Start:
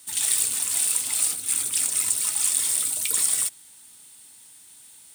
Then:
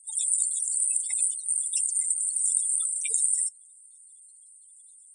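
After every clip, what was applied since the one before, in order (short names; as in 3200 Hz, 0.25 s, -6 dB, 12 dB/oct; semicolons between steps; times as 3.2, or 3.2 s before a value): steep low-pass 9900 Hz 72 dB/oct; spectral gate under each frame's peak -10 dB strong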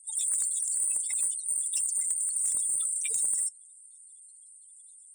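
soft clip -21.5 dBFS, distortion -12 dB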